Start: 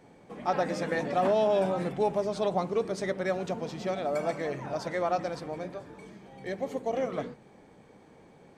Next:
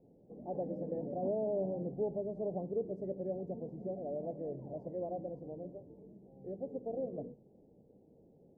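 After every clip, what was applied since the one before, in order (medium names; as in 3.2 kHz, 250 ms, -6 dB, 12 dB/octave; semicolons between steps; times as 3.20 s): inverse Chebyshev low-pass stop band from 1.2 kHz, stop band 40 dB; trim -6.5 dB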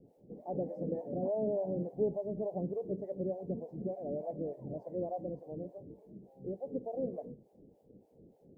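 harmonic tremolo 3.4 Hz, depth 100%, crossover 550 Hz; trim +7 dB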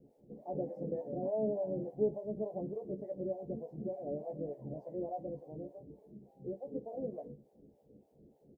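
doubling 14 ms -5 dB; trim -3 dB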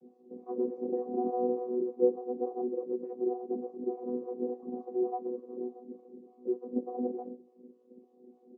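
vocoder on a held chord bare fifth, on B3; trim +6.5 dB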